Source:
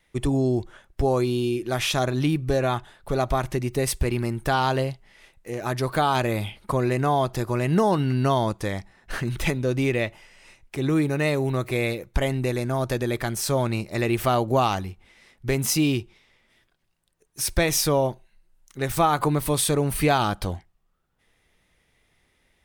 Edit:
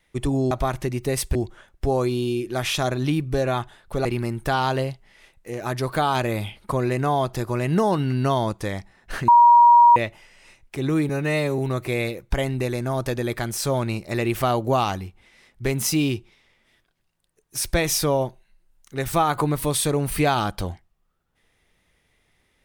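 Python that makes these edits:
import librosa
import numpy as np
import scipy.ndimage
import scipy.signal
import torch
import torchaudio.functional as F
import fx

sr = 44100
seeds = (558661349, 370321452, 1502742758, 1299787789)

y = fx.edit(x, sr, fx.move(start_s=3.21, length_s=0.84, to_s=0.51),
    fx.bleep(start_s=9.28, length_s=0.68, hz=952.0, db=-8.5),
    fx.stretch_span(start_s=11.09, length_s=0.33, factor=1.5), tone=tone)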